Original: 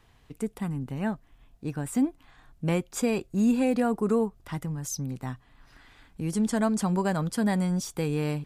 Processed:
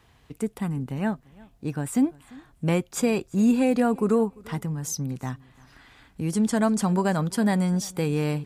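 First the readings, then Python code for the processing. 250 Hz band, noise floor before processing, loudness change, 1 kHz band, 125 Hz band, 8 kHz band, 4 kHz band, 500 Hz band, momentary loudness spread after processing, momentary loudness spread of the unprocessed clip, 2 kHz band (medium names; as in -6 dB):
+3.0 dB, -60 dBFS, +3.0 dB, +3.0 dB, +3.0 dB, +3.0 dB, +3.0 dB, +3.0 dB, 11 LU, 11 LU, +3.0 dB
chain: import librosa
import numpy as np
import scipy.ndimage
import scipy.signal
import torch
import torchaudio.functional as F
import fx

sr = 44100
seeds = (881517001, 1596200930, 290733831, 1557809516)

p1 = scipy.signal.sosfilt(scipy.signal.butter(2, 46.0, 'highpass', fs=sr, output='sos'), x)
p2 = p1 + fx.echo_feedback(p1, sr, ms=345, feedback_pct=19, wet_db=-24, dry=0)
y = p2 * 10.0 ** (3.0 / 20.0)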